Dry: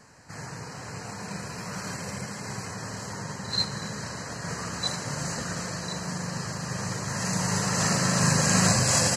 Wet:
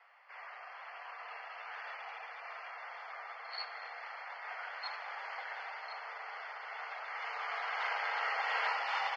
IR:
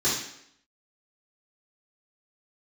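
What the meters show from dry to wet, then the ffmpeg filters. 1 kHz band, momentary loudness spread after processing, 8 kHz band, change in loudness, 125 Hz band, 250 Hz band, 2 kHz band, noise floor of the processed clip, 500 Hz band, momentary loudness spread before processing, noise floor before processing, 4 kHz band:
-5.0 dB, 13 LU, under -40 dB, -12.0 dB, under -40 dB, under -40 dB, -5.0 dB, -50 dBFS, -14.5 dB, 17 LU, -40 dBFS, -15.5 dB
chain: -af "highpass=f=370:t=q:w=0.5412,highpass=f=370:t=q:w=1.307,lowpass=f=3400:t=q:w=0.5176,lowpass=f=3400:t=q:w=0.7071,lowpass=f=3400:t=q:w=1.932,afreqshift=270,volume=0.501"

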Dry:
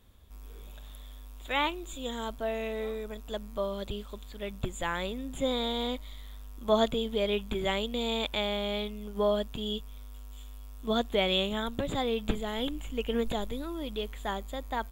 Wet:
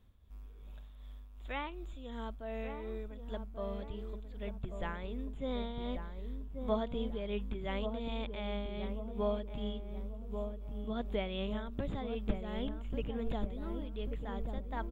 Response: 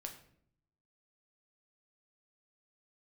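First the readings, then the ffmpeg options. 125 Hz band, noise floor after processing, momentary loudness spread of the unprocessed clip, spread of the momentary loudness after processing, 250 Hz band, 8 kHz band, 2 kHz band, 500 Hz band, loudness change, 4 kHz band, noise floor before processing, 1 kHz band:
-1.0 dB, -50 dBFS, 19 LU, 9 LU, -5.5 dB, under -20 dB, -11.0 dB, -8.5 dB, -8.0 dB, -15.5 dB, -45 dBFS, -9.5 dB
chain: -filter_complex "[0:a]acrossover=split=3700[s0][s1];[s1]acompressor=threshold=0.00178:ratio=4:attack=1:release=60[s2];[s0][s2]amix=inputs=2:normalize=0,bass=f=250:g=6,treble=f=4000:g=-8,tremolo=f=2.7:d=0.47,asplit=2[s3][s4];[s4]adelay=1138,lowpass=f=850:p=1,volume=0.531,asplit=2[s5][s6];[s6]adelay=1138,lowpass=f=850:p=1,volume=0.52,asplit=2[s7][s8];[s8]adelay=1138,lowpass=f=850:p=1,volume=0.52,asplit=2[s9][s10];[s10]adelay=1138,lowpass=f=850:p=1,volume=0.52,asplit=2[s11][s12];[s12]adelay=1138,lowpass=f=850:p=1,volume=0.52,asplit=2[s13][s14];[s14]adelay=1138,lowpass=f=850:p=1,volume=0.52,asplit=2[s15][s16];[s16]adelay=1138,lowpass=f=850:p=1,volume=0.52[s17];[s5][s7][s9][s11][s13][s15][s17]amix=inputs=7:normalize=0[s18];[s3][s18]amix=inputs=2:normalize=0,volume=0.422"

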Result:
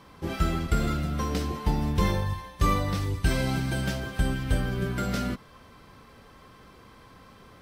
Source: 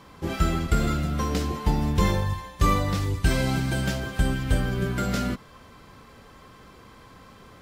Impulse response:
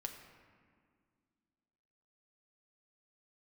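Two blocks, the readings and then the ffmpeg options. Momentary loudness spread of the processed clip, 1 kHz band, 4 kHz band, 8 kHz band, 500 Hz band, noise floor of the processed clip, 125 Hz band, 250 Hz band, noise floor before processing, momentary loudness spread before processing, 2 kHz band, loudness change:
5 LU, -2.5 dB, -2.5 dB, -3.5 dB, -2.5 dB, -52 dBFS, -2.5 dB, -2.5 dB, -50 dBFS, 5 LU, -2.5 dB, -2.5 dB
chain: -af "bandreject=f=7000:w=11,volume=0.75"

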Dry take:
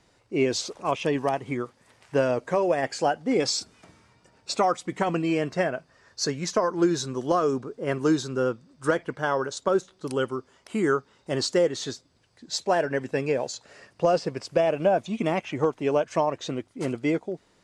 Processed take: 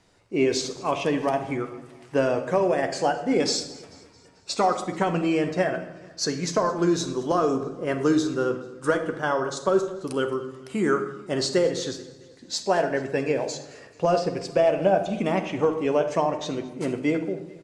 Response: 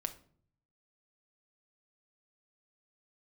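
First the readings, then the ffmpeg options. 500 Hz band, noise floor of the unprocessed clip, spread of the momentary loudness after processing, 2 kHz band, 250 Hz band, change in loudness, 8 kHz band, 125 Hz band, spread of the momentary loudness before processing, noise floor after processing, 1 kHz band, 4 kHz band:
+1.5 dB, -63 dBFS, 9 LU, +1.0 dB, +2.0 dB, +1.5 dB, +1.0 dB, +1.0 dB, 9 LU, -51 dBFS, +1.0 dB, +1.0 dB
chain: -filter_complex "[0:a]aecho=1:1:219|438|657|876:0.0841|0.0454|0.0245|0.0132[s0];[1:a]atrim=start_sample=2205,asetrate=23814,aresample=44100[s1];[s0][s1]afir=irnorm=-1:irlink=0,volume=0.794"

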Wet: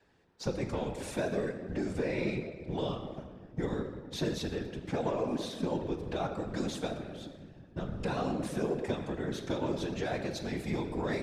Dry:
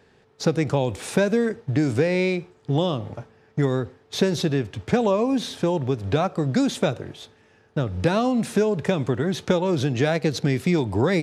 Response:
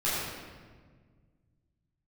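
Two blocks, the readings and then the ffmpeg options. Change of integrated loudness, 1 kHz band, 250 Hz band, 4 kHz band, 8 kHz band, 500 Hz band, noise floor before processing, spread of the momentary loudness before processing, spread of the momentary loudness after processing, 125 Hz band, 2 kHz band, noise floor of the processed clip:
-12.0 dB, -10.0 dB, -12.0 dB, -11.0 dB, -11.0 dB, -11.5 dB, -58 dBFS, 7 LU, 7 LU, -13.5 dB, -11.5 dB, -54 dBFS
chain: -filter_complex "[0:a]asoftclip=type=tanh:threshold=0.266,asplit=2[s0][s1];[1:a]atrim=start_sample=2205[s2];[s1][s2]afir=irnorm=-1:irlink=0,volume=0.188[s3];[s0][s3]amix=inputs=2:normalize=0,adynamicequalizer=threshold=0.0141:dfrequency=110:dqfactor=1.1:tfrequency=110:tqfactor=1.1:attack=5:release=100:ratio=0.375:range=3.5:mode=cutabove:tftype=bell,afftfilt=real='hypot(re,im)*cos(2*PI*random(0))':imag='hypot(re,im)*sin(2*PI*random(1))':win_size=512:overlap=0.75,volume=0.501"

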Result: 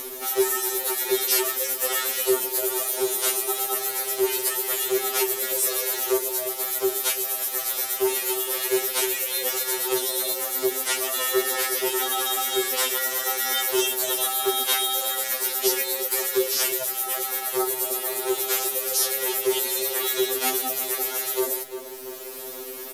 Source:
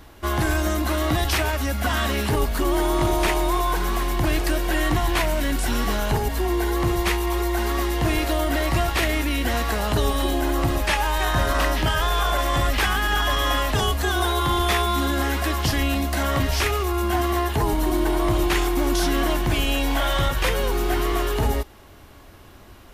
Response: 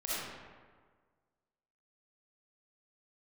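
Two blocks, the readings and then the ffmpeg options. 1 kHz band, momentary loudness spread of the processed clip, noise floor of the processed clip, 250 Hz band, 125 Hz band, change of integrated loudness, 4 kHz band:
-7.5 dB, 3 LU, -35 dBFS, -9.5 dB, under -30 dB, -0.5 dB, -0.5 dB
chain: -filter_complex "[0:a]aeval=exprs='val(0)*sin(2*PI*260*n/s)':c=same,highpass=f=400:t=q:w=4.9,aemphasis=mode=production:type=50kf,asplit=2[s0][s1];[s1]adelay=346,lowpass=f=2900:p=1,volume=0.251,asplit=2[s2][s3];[s3]adelay=346,lowpass=f=2900:p=1,volume=0.32,asplit=2[s4][s5];[s5]adelay=346,lowpass=f=2900:p=1,volume=0.32[s6];[s0][s2][s4][s6]amix=inputs=4:normalize=0,acompressor=mode=upward:threshold=0.0891:ratio=2.5,highshelf=f=3900:g=10.5,aresample=32000,aresample=44100,acrusher=bits=7:dc=4:mix=0:aa=0.000001,afftfilt=real='re*2.45*eq(mod(b,6),0)':imag='im*2.45*eq(mod(b,6),0)':win_size=2048:overlap=0.75,volume=0.631"

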